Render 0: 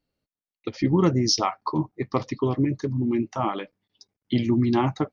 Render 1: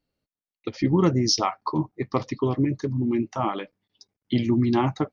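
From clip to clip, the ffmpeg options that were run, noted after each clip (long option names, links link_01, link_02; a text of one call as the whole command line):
ffmpeg -i in.wav -af anull out.wav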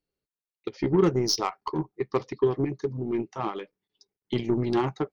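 ffmpeg -i in.wav -af "aeval=exprs='0.376*(cos(1*acos(clip(val(0)/0.376,-1,1)))-cos(1*PI/2))+0.0119*(cos(4*acos(clip(val(0)/0.376,-1,1)))-cos(4*PI/2))+0.0211*(cos(7*acos(clip(val(0)/0.376,-1,1)))-cos(7*PI/2))':channel_layout=same,equalizer=frequency=100:width_type=o:width=0.33:gain=-8,equalizer=frequency=250:width_type=o:width=0.33:gain=-6,equalizer=frequency=400:width_type=o:width=0.33:gain=9,equalizer=frequency=630:width_type=o:width=0.33:gain=-4,volume=-3dB" out.wav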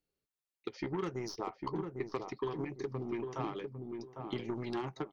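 ffmpeg -i in.wav -filter_complex "[0:a]acrossover=split=770|1700[link_01][link_02][link_03];[link_01]acompressor=threshold=-36dB:ratio=4[link_04];[link_02]acompressor=threshold=-43dB:ratio=4[link_05];[link_03]acompressor=threshold=-48dB:ratio=4[link_06];[link_04][link_05][link_06]amix=inputs=3:normalize=0,asplit=2[link_07][link_08];[link_08]adelay=802,lowpass=frequency=820:poles=1,volume=-3.5dB,asplit=2[link_09][link_10];[link_10]adelay=802,lowpass=frequency=820:poles=1,volume=0.29,asplit=2[link_11][link_12];[link_12]adelay=802,lowpass=frequency=820:poles=1,volume=0.29,asplit=2[link_13][link_14];[link_14]adelay=802,lowpass=frequency=820:poles=1,volume=0.29[link_15];[link_07][link_09][link_11][link_13][link_15]amix=inputs=5:normalize=0,volume=-2dB" out.wav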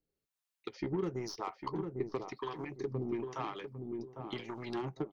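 ffmpeg -i in.wav -filter_complex "[0:a]acrossover=split=660[link_01][link_02];[link_01]aeval=exprs='val(0)*(1-0.7/2+0.7/2*cos(2*PI*1*n/s))':channel_layout=same[link_03];[link_02]aeval=exprs='val(0)*(1-0.7/2-0.7/2*cos(2*PI*1*n/s))':channel_layout=same[link_04];[link_03][link_04]amix=inputs=2:normalize=0,volume=3dB" out.wav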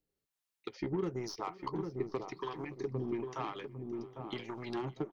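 ffmpeg -i in.wav -af "aecho=1:1:569|1138|1707:0.0841|0.0337|0.0135" out.wav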